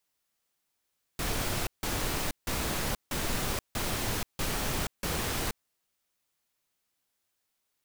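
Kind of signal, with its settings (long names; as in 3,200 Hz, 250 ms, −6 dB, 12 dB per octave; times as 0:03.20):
noise bursts pink, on 0.48 s, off 0.16 s, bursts 7, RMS −31 dBFS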